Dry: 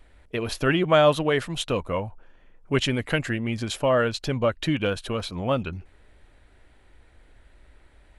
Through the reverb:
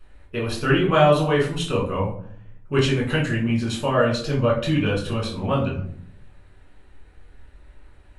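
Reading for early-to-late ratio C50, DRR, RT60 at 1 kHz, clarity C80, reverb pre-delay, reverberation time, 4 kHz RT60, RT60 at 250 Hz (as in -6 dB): 7.0 dB, -4.0 dB, 0.55 s, 11.5 dB, 5 ms, 0.65 s, 0.30 s, 0.90 s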